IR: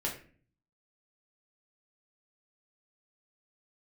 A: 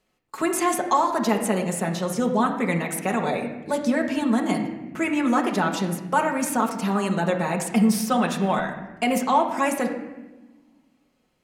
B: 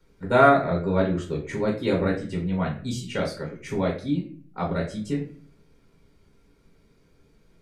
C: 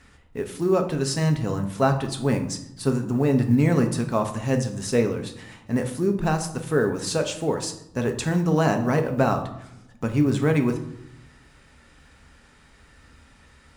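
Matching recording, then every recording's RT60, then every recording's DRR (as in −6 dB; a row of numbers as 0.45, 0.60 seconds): B; 1.2, 0.45, 0.75 seconds; −0.5, −1.0, 5.0 decibels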